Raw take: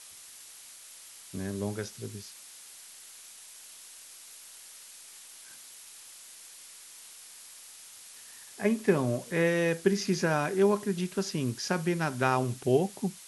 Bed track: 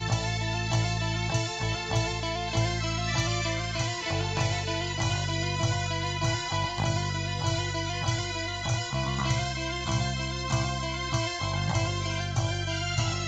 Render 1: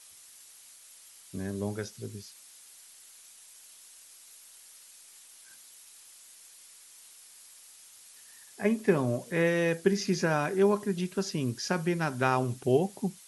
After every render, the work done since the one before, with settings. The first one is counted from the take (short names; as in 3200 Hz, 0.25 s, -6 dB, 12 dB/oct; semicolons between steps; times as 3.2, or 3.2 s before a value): denoiser 6 dB, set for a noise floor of -50 dBFS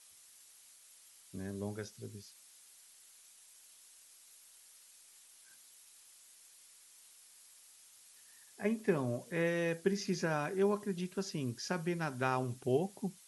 gain -7 dB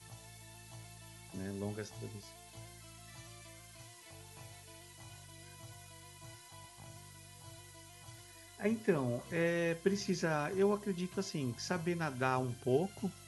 add bed track -26 dB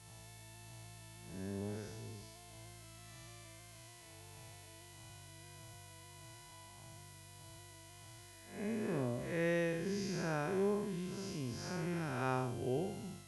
time blur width 0.193 s